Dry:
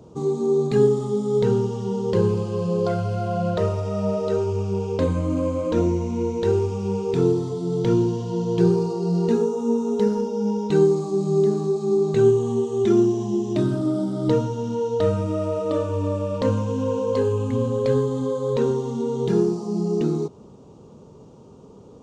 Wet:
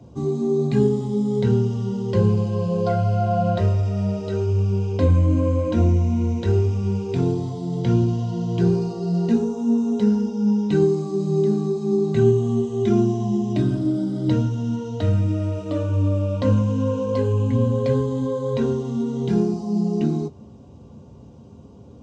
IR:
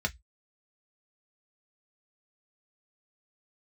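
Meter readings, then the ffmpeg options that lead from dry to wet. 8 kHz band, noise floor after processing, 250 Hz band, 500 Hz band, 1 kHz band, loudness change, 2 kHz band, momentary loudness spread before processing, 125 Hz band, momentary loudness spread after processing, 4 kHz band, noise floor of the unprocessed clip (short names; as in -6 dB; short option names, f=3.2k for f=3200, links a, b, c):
n/a, -44 dBFS, +2.0 dB, -3.0 dB, -0.5 dB, +1.0 dB, 0.0 dB, 6 LU, +5.0 dB, 5 LU, -0.5 dB, -46 dBFS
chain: -filter_complex "[1:a]atrim=start_sample=2205,asetrate=48510,aresample=44100[a];[0:a][a]afir=irnorm=-1:irlink=0,volume=-5.5dB"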